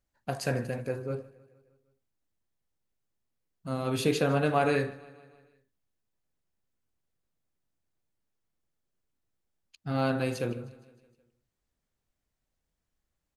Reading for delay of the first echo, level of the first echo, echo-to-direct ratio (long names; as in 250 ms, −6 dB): 155 ms, −21.5 dB, −19.5 dB